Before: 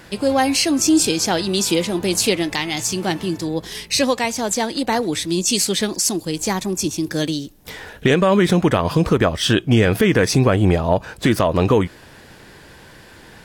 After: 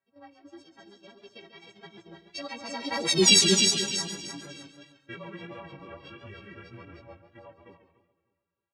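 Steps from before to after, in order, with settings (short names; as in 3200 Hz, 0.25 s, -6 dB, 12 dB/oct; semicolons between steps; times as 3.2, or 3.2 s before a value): frequency quantiser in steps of 3 st; Doppler pass-by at 4.97, 28 m/s, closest 2.9 m; LPF 5700 Hz 12 dB/oct; low-pass opened by the level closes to 1800 Hz, open at -25.5 dBFS; feedback echo 0.471 s, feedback 28%, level -5 dB; time stretch by phase-locked vocoder 0.65×; gate -50 dBFS, range -13 dB; harmonic-percussive split harmonic +6 dB; flange 1.6 Hz, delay 6.9 ms, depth 5.2 ms, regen -22%; warbling echo 0.139 s, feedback 33%, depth 76 cents, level -11 dB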